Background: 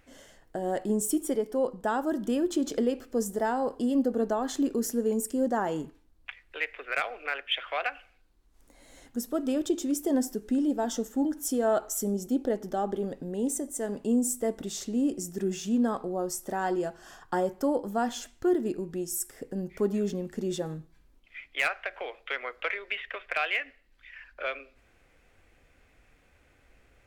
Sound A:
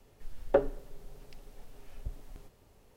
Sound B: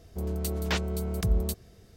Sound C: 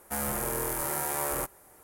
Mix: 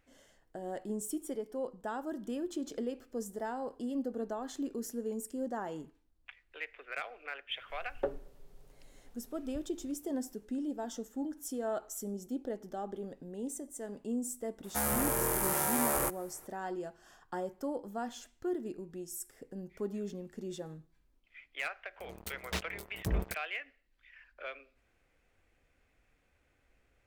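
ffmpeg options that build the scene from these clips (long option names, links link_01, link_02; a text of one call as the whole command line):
ffmpeg -i bed.wav -i cue0.wav -i cue1.wav -i cue2.wav -filter_complex "[0:a]volume=-10dB[link_01];[2:a]acrusher=bits=3:mix=0:aa=0.5[link_02];[1:a]atrim=end=2.96,asetpts=PTS-STARTPTS,volume=-9dB,afade=type=in:duration=0.004:curve=hsin,afade=type=out:start_time=2.956:duration=0.004:curve=hsin,adelay=7490[link_03];[3:a]atrim=end=1.83,asetpts=PTS-STARTPTS,afade=type=in:duration=0.004:curve=hsin,afade=type=out:start_time=1.826:duration=0.004:curve=hsin,adelay=14640[link_04];[link_02]atrim=end=1.96,asetpts=PTS-STARTPTS,volume=-8dB,afade=type=in:duration=0.004:curve=hsin,afade=type=out:start_time=1.956:duration=0.004:curve=hsin,adelay=21820[link_05];[link_01][link_03][link_04][link_05]amix=inputs=4:normalize=0" out.wav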